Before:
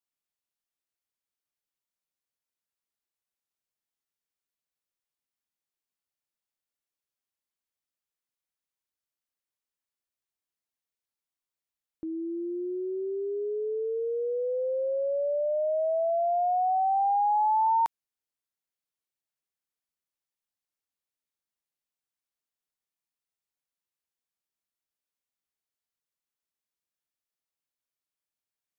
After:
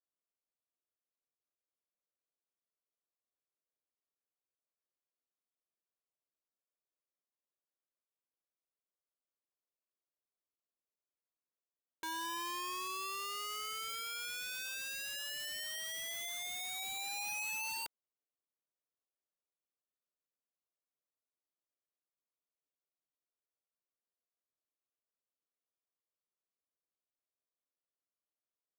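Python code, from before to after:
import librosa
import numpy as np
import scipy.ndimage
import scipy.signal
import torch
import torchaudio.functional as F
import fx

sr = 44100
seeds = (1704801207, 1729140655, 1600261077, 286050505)

y = scipy.signal.sosfilt(scipy.signal.butter(4, 1100.0, 'lowpass', fs=sr, output='sos'), x)
y = fx.peak_eq(y, sr, hz=860.0, db=-13.5, octaves=0.29)
y = 10.0 ** (-33.0 / 20.0) * np.tanh(y / 10.0 ** (-33.0 / 20.0))
y = scipy.signal.sosfilt(scipy.signal.butter(2, 340.0, 'highpass', fs=sr, output='sos'), y)
y = (np.mod(10.0 ** (37.5 / 20.0) * y + 1.0, 2.0) - 1.0) / 10.0 ** (37.5 / 20.0)
y = F.gain(torch.from_numpy(y), 1.0).numpy()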